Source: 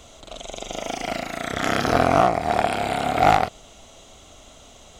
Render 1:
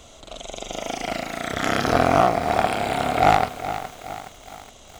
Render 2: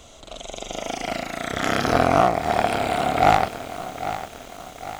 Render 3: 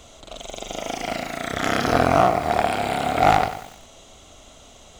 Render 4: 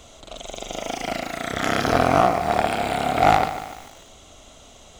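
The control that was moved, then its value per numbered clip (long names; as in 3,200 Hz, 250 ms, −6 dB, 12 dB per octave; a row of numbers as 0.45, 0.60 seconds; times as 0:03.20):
feedback echo at a low word length, delay time: 418, 802, 94, 147 milliseconds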